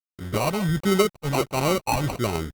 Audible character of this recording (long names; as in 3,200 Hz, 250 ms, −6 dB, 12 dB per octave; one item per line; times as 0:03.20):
a quantiser's noise floor 8 bits, dither none
phaser sweep stages 12, 1.4 Hz, lowest notch 370–1,600 Hz
aliases and images of a low sample rate 1,700 Hz, jitter 0%
Opus